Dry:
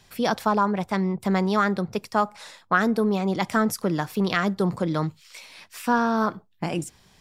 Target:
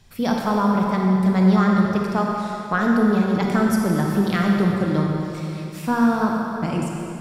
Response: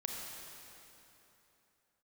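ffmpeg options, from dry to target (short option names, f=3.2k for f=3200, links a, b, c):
-filter_complex "[0:a]lowshelf=f=200:g=11.5[a];[1:a]atrim=start_sample=2205,asetrate=48510,aresample=44100[b];[a][b]afir=irnorm=-1:irlink=0"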